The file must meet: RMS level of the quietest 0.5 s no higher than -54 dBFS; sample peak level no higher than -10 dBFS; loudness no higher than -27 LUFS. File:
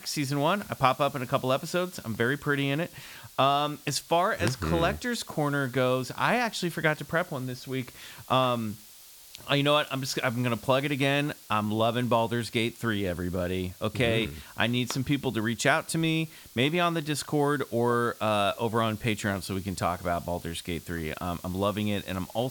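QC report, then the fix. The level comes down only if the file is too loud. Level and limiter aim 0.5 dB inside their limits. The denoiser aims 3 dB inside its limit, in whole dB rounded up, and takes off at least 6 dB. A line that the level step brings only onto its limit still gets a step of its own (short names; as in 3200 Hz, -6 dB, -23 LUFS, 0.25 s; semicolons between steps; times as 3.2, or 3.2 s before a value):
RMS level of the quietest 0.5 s -50 dBFS: fail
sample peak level -8.0 dBFS: fail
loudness -28.0 LUFS: OK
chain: denoiser 7 dB, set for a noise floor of -50 dBFS; limiter -10.5 dBFS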